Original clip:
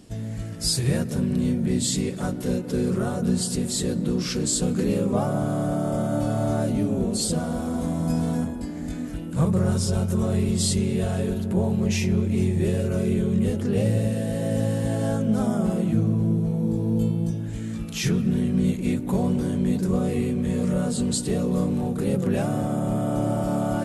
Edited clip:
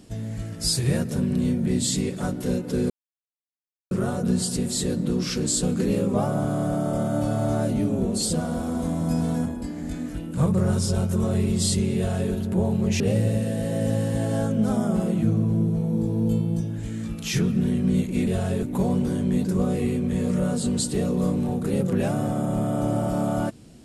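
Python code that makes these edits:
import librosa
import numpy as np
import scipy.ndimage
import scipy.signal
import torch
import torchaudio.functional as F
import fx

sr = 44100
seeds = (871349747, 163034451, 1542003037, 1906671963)

y = fx.edit(x, sr, fx.insert_silence(at_s=2.9, length_s=1.01),
    fx.duplicate(start_s=10.95, length_s=0.36, to_s=18.97),
    fx.cut(start_s=11.99, length_s=1.71), tone=tone)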